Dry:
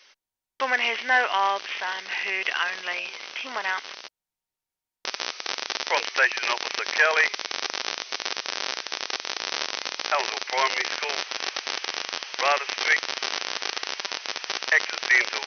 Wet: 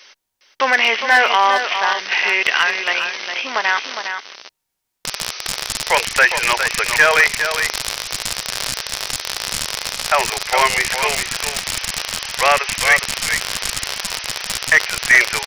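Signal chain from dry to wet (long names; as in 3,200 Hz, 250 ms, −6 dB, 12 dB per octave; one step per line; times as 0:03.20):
high-shelf EQ 5,500 Hz +2 dB
in parallel at −1.5 dB: output level in coarse steps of 15 dB
on the sum: wave folding −10 dBFS
single-tap delay 409 ms −8 dB
level +6 dB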